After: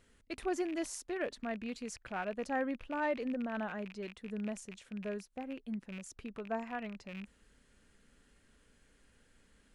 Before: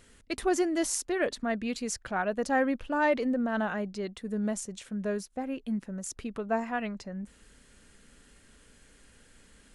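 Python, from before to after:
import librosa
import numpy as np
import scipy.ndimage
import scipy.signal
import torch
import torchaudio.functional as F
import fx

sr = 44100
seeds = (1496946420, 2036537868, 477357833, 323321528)

y = fx.rattle_buzz(x, sr, strikes_db=-46.0, level_db=-29.0)
y = fx.high_shelf(y, sr, hz=4600.0, db=-6.0)
y = F.gain(torch.from_numpy(y), -8.0).numpy()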